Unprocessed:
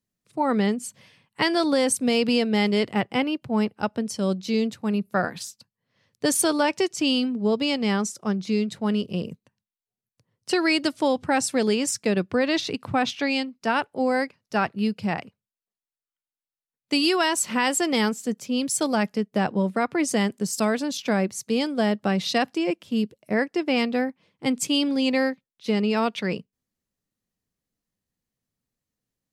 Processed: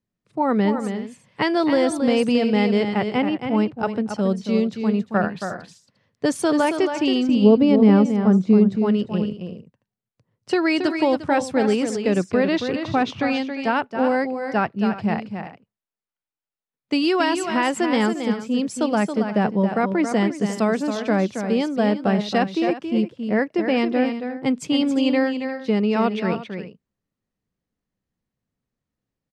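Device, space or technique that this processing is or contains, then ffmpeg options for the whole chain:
through cloth: -filter_complex "[0:a]lowpass=9.3k,highshelf=f=3.4k:g=-13,asettb=1/sr,asplit=3[a][b][c];[a]atrim=end=7.294[d];[b]atrim=start=7.29:end=8.77,asetpts=PTS-STARTPTS,afade=t=in:d=0.004:c=qsin,afade=t=out:st=1.476:d=0.004:c=qsin,tiltshelf=f=1.1k:g=8[e];[c]atrim=start=8.766[f];[d][e]acrossfade=d=0.004:c1=hsin:c2=qsin[g];[g][f]acrossfade=d=0.004:c1=qsin:c2=hsin,aecho=1:1:274|351:0.422|0.178,volume=3dB"

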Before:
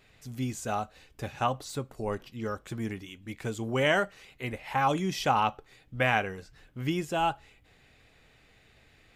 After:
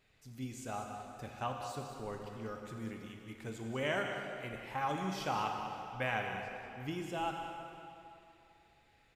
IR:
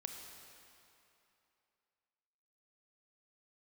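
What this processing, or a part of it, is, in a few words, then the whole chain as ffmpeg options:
cave: -filter_complex "[0:a]aecho=1:1:192:0.316[a];[1:a]atrim=start_sample=2205[b];[a][b]afir=irnorm=-1:irlink=0,volume=-6.5dB"

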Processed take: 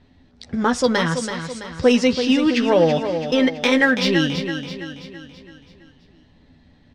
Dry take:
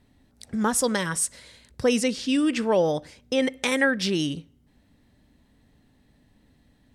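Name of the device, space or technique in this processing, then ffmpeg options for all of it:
parallel distortion: -filter_complex "[0:a]lowpass=f=5.2k:w=0.5412,lowpass=f=5.2k:w=1.3066,highshelf=f=8.9k:g=5,asplit=2[a][b];[b]asoftclip=type=hard:threshold=-24.5dB,volume=-9.5dB[c];[a][c]amix=inputs=2:normalize=0,asplit=2[d][e];[e]adelay=12,volume=-7dB[f];[d][f]amix=inputs=2:normalize=0,aecho=1:1:331|662|993|1324|1655|1986:0.376|0.184|0.0902|0.0442|0.0217|0.0106,volume=3.5dB"

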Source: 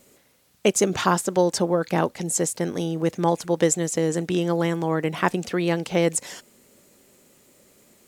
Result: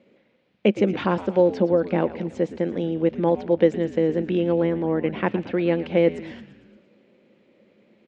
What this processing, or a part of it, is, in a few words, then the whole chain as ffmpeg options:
frequency-shifting delay pedal into a guitar cabinet: -filter_complex "[0:a]asplit=7[a][b][c][d][e][f][g];[b]adelay=114,afreqshift=-91,volume=-14dB[h];[c]adelay=228,afreqshift=-182,volume=-18.4dB[i];[d]adelay=342,afreqshift=-273,volume=-22.9dB[j];[e]adelay=456,afreqshift=-364,volume=-27.3dB[k];[f]adelay=570,afreqshift=-455,volume=-31.7dB[l];[g]adelay=684,afreqshift=-546,volume=-36.2dB[m];[a][h][i][j][k][l][m]amix=inputs=7:normalize=0,highpass=80,equalizer=f=86:t=q:w=4:g=-6,equalizer=f=210:t=q:w=4:g=10,equalizer=f=330:t=q:w=4:g=6,equalizer=f=520:t=q:w=4:g=8,equalizer=f=1.2k:t=q:w=4:g=-4,equalizer=f=2.3k:t=q:w=4:g=4,lowpass=f=3.4k:w=0.5412,lowpass=f=3.4k:w=1.3066,asettb=1/sr,asplit=3[n][o][p];[n]atrim=end=4.614[q];[o]atrim=start=4.61:end=5.02,asetpts=PTS-STARTPTS,afade=t=in:d=0.004:c=qsin,afade=t=out:st=0.406:d=0.004:c=qsin,equalizer=f=2.8k:t=o:w=1.5:g=-4.5[r];[p]atrim=start=5.016[s];[q][r]acrossfade=d=0.004:c1=hsin:c2=qsin[t];[t][s]acrossfade=d=0.004:c1=qsin:c2=hsin,volume=-4.5dB"

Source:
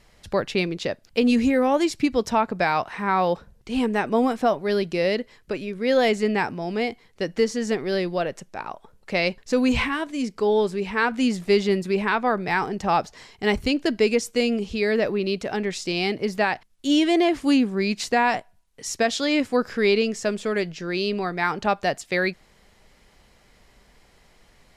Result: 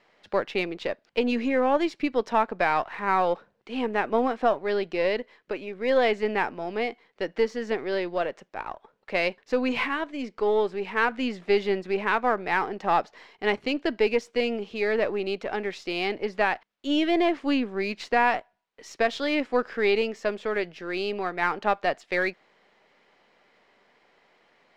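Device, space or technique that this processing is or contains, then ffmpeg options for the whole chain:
crystal radio: -af "highpass=330,lowpass=3k,aeval=exprs='if(lt(val(0),0),0.708*val(0),val(0))':c=same"

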